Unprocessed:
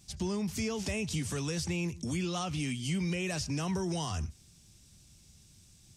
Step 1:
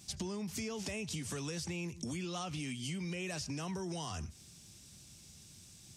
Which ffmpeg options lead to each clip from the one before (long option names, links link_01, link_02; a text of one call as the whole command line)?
ffmpeg -i in.wav -af "highpass=frequency=140:poles=1,acompressor=threshold=-42dB:ratio=6,volume=4.5dB" out.wav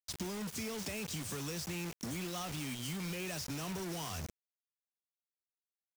ffmpeg -i in.wav -af "acrusher=bits=6:mix=0:aa=0.000001,volume=-1dB" out.wav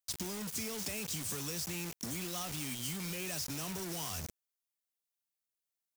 ffmpeg -i in.wav -af "highshelf=frequency=5200:gain=9,volume=-1.5dB" out.wav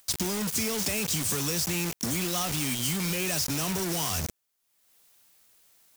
ffmpeg -i in.wav -filter_complex "[0:a]asplit=2[link_01][link_02];[link_02]asoftclip=type=tanh:threshold=-36dB,volume=-4dB[link_03];[link_01][link_03]amix=inputs=2:normalize=0,acompressor=mode=upward:threshold=-52dB:ratio=2.5,volume=7dB" out.wav